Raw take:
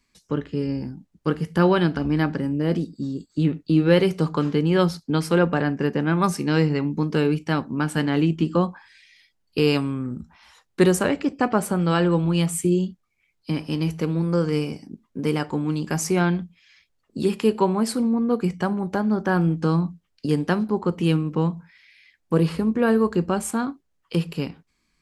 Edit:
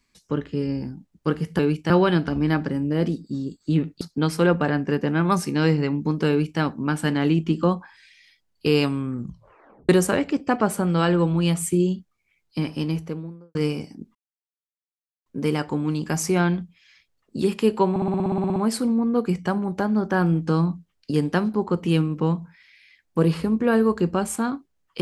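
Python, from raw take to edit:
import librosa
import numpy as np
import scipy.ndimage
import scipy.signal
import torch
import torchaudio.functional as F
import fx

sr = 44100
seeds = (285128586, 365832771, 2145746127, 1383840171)

y = fx.studio_fade_out(x, sr, start_s=13.63, length_s=0.84)
y = fx.edit(y, sr, fx.cut(start_s=3.7, length_s=1.23),
    fx.duplicate(start_s=7.21, length_s=0.31, to_s=1.59),
    fx.tape_stop(start_s=10.1, length_s=0.71),
    fx.insert_silence(at_s=15.07, length_s=1.11),
    fx.stutter(start_s=17.71, slice_s=0.06, count=12), tone=tone)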